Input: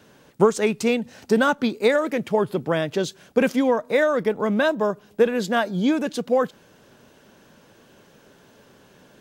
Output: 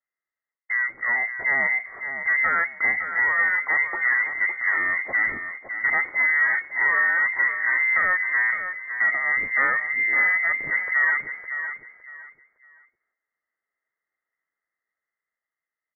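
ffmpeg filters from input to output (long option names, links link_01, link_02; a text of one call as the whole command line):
ffmpeg -i in.wav -filter_complex "[0:a]highpass=frequency=130:poles=1,agate=range=-39dB:threshold=-40dB:ratio=16:detection=peak,alimiter=limit=-13dB:level=0:latency=1:release=222,dynaudnorm=framelen=100:gausssize=13:maxgain=5.5dB,asoftclip=type=tanh:threshold=-17.5dB,asplit=2[link_01][link_02];[link_02]aecho=0:1:323|646|969:0.355|0.0887|0.0222[link_03];[link_01][link_03]amix=inputs=2:normalize=0,lowpass=frequency=3200:width_type=q:width=0.5098,lowpass=frequency=3200:width_type=q:width=0.6013,lowpass=frequency=3200:width_type=q:width=0.9,lowpass=frequency=3200:width_type=q:width=2.563,afreqshift=-3800,asetrate=25442,aresample=44100" out.wav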